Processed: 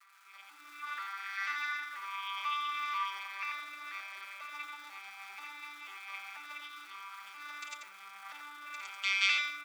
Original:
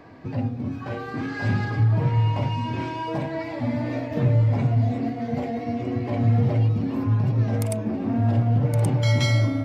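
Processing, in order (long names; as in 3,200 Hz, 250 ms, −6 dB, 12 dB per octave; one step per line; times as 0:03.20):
vocoder with an arpeggio as carrier bare fifth, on G3, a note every 489 ms
brickwall limiter −17 dBFS, peak gain reduction 8 dB
high shelf with overshoot 1,700 Hz +13.5 dB, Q 1.5
surface crackle 450 per second −35 dBFS
four-pole ladder high-pass 1,200 Hz, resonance 80%
comb filter 6 ms, depth 75%
on a send: single-tap delay 88 ms −6.5 dB
on the sum: automatic gain control gain up to 6.5 dB
level −7 dB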